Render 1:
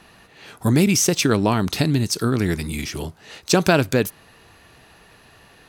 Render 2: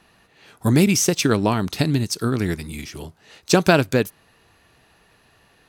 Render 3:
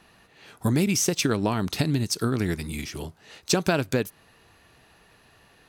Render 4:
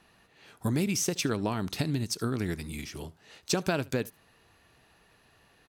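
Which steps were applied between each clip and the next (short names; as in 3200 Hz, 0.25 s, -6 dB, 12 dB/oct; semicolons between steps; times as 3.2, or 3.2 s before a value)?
upward expander 1.5:1, over -30 dBFS; gain +2 dB
compressor 3:1, threshold -21 dBFS, peak gain reduction 9 dB
echo 74 ms -23.5 dB; gain -5.5 dB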